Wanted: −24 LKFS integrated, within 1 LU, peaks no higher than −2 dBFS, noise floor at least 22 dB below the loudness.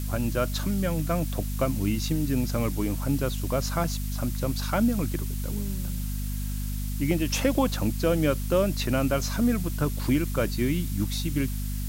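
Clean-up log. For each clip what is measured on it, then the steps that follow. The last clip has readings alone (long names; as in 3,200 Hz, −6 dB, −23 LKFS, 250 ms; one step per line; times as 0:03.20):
mains hum 50 Hz; hum harmonics up to 250 Hz; level of the hum −28 dBFS; background noise floor −30 dBFS; target noise floor −50 dBFS; integrated loudness −27.5 LKFS; sample peak −10.5 dBFS; target loudness −24.0 LKFS
→ hum removal 50 Hz, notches 5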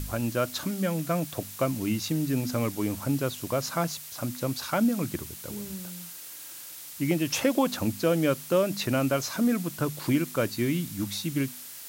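mains hum none found; background noise floor −43 dBFS; target noise floor −51 dBFS
→ noise reduction from a noise print 8 dB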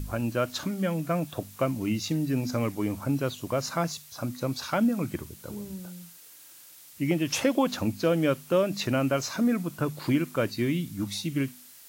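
background noise floor −51 dBFS; integrated loudness −28.5 LKFS; sample peak −12.5 dBFS; target loudness −24.0 LKFS
→ level +4.5 dB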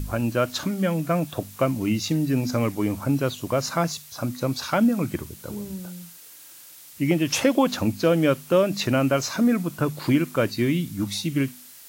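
integrated loudness −24.0 LKFS; sample peak −7.5 dBFS; background noise floor −46 dBFS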